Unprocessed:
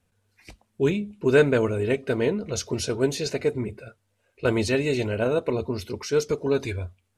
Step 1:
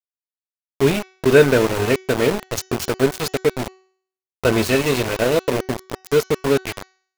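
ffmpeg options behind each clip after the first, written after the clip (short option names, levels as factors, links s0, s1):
-af "aeval=exprs='val(0)*gte(abs(val(0)),0.0596)':c=same,bandreject=f=376.3:t=h:w=4,bandreject=f=752.6:t=h:w=4,bandreject=f=1128.9:t=h:w=4,bandreject=f=1505.2:t=h:w=4,bandreject=f=1881.5:t=h:w=4,bandreject=f=2257.8:t=h:w=4,bandreject=f=2634.1:t=h:w=4,bandreject=f=3010.4:t=h:w=4,bandreject=f=3386.7:t=h:w=4,bandreject=f=3763:t=h:w=4,bandreject=f=4139.3:t=h:w=4,bandreject=f=4515.6:t=h:w=4,bandreject=f=4891.9:t=h:w=4,bandreject=f=5268.2:t=h:w=4,bandreject=f=5644.5:t=h:w=4,bandreject=f=6020.8:t=h:w=4,bandreject=f=6397.1:t=h:w=4,bandreject=f=6773.4:t=h:w=4,bandreject=f=7149.7:t=h:w=4,volume=2"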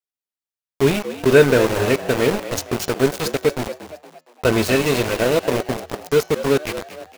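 -filter_complex "[0:a]asplit=5[s0][s1][s2][s3][s4];[s1]adelay=232,afreqshift=80,volume=0.224[s5];[s2]adelay=464,afreqshift=160,volume=0.0989[s6];[s3]adelay=696,afreqshift=240,volume=0.0432[s7];[s4]adelay=928,afreqshift=320,volume=0.0191[s8];[s0][s5][s6][s7][s8]amix=inputs=5:normalize=0"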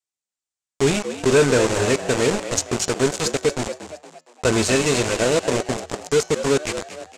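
-af "asoftclip=type=tanh:threshold=0.335,lowpass=f=7600:t=q:w=3"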